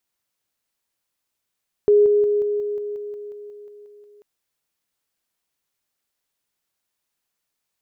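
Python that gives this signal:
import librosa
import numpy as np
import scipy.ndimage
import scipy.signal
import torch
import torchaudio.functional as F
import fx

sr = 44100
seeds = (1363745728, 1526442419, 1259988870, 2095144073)

y = fx.level_ladder(sr, hz=414.0, from_db=-10.5, step_db=-3.0, steps=13, dwell_s=0.18, gap_s=0.0)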